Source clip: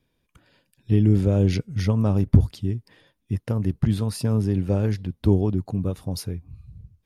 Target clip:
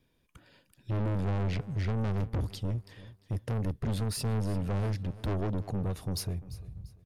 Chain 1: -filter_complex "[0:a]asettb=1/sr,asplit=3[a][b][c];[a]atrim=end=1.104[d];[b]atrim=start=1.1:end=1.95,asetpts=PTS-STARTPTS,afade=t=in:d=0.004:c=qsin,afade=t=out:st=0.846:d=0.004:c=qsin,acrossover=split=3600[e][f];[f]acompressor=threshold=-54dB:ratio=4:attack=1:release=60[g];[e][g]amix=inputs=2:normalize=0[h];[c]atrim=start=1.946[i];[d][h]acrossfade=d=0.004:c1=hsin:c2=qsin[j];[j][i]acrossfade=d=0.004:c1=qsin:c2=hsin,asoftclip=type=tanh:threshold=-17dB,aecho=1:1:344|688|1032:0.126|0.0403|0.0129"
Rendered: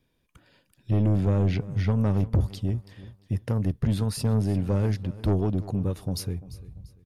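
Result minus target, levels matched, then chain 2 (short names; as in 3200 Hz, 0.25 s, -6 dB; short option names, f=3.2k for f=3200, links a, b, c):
soft clip: distortion -6 dB
-filter_complex "[0:a]asettb=1/sr,asplit=3[a][b][c];[a]atrim=end=1.104[d];[b]atrim=start=1.1:end=1.95,asetpts=PTS-STARTPTS,afade=t=in:d=0.004:c=qsin,afade=t=out:st=0.846:d=0.004:c=qsin,acrossover=split=3600[e][f];[f]acompressor=threshold=-54dB:ratio=4:attack=1:release=60[g];[e][g]amix=inputs=2:normalize=0[h];[c]atrim=start=1.946[i];[d][h]acrossfade=d=0.004:c1=hsin:c2=qsin[j];[j][i]acrossfade=d=0.004:c1=qsin:c2=hsin,asoftclip=type=tanh:threshold=-28dB,aecho=1:1:344|688|1032:0.126|0.0403|0.0129"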